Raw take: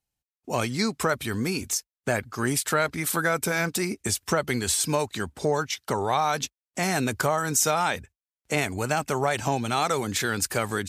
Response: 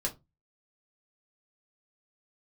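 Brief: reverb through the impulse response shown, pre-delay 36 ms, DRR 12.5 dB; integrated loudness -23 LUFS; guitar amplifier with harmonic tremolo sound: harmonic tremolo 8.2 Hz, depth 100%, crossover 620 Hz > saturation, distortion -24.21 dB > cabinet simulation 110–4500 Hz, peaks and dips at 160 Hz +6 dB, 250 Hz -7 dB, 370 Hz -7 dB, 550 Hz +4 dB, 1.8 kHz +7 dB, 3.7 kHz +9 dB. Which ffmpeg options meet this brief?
-filter_complex "[0:a]asplit=2[s0][s1];[1:a]atrim=start_sample=2205,adelay=36[s2];[s1][s2]afir=irnorm=-1:irlink=0,volume=0.15[s3];[s0][s3]amix=inputs=2:normalize=0,acrossover=split=620[s4][s5];[s4]aeval=exprs='val(0)*(1-1/2+1/2*cos(2*PI*8.2*n/s))':c=same[s6];[s5]aeval=exprs='val(0)*(1-1/2-1/2*cos(2*PI*8.2*n/s))':c=same[s7];[s6][s7]amix=inputs=2:normalize=0,asoftclip=threshold=0.168,highpass=110,equalizer=f=160:t=q:w=4:g=6,equalizer=f=250:t=q:w=4:g=-7,equalizer=f=370:t=q:w=4:g=-7,equalizer=f=550:t=q:w=4:g=4,equalizer=f=1800:t=q:w=4:g=7,equalizer=f=3700:t=q:w=4:g=9,lowpass=f=4500:w=0.5412,lowpass=f=4500:w=1.3066,volume=2.37"

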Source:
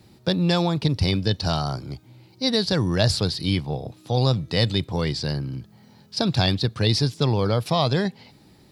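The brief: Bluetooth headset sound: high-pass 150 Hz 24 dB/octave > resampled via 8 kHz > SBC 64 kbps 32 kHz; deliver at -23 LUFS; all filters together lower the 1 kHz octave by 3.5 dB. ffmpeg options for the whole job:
-af "highpass=f=150:w=0.5412,highpass=f=150:w=1.3066,equalizer=f=1000:t=o:g=-5,aresample=8000,aresample=44100,volume=1.41" -ar 32000 -c:a sbc -b:a 64k

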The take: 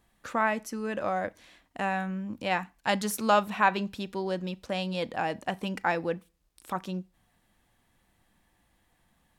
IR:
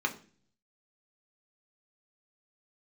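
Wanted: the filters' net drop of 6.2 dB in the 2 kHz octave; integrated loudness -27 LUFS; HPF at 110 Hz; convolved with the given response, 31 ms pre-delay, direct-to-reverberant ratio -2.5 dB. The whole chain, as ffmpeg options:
-filter_complex "[0:a]highpass=110,equalizer=f=2000:t=o:g=-8.5,asplit=2[s0][s1];[1:a]atrim=start_sample=2205,adelay=31[s2];[s1][s2]afir=irnorm=-1:irlink=0,volume=0.562[s3];[s0][s3]amix=inputs=2:normalize=0,volume=1.12"

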